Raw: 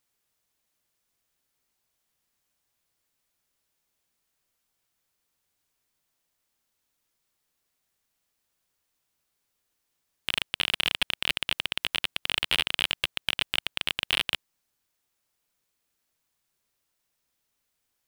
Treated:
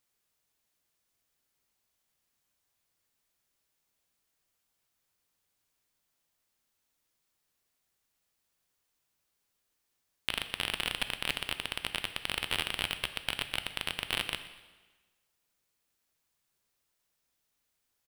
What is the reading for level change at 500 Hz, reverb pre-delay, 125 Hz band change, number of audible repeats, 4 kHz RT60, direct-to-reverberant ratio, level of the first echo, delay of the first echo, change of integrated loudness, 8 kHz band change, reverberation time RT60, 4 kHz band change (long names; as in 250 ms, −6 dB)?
−1.5 dB, 7 ms, −1.0 dB, 1, 1.2 s, 9.5 dB, −19.5 dB, 123 ms, −6.5 dB, −2.5 dB, 1.3 s, −7.0 dB